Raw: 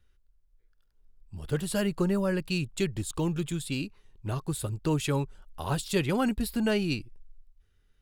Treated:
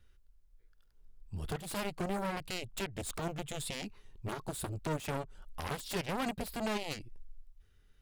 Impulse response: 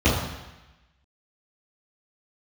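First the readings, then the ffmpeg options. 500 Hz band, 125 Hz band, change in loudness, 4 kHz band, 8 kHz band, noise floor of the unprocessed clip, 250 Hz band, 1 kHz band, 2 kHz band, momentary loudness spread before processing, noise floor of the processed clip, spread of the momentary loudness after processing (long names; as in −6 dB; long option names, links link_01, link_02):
−8.0 dB, −10.5 dB, −8.5 dB, −5.0 dB, −5.0 dB, −67 dBFS, −11.5 dB, −2.0 dB, −5.0 dB, 9 LU, −65 dBFS, 9 LU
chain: -af "aeval=exprs='0.188*(cos(1*acos(clip(val(0)/0.188,-1,1)))-cos(1*PI/2))+0.0473*(cos(7*acos(clip(val(0)/0.188,-1,1)))-cos(7*PI/2))':channel_layout=same,acompressor=threshold=-35dB:ratio=4,alimiter=level_in=4.5dB:limit=-24dB:level=0:latency=1:release=50,volume=-4.5dB,volume=4.5dB"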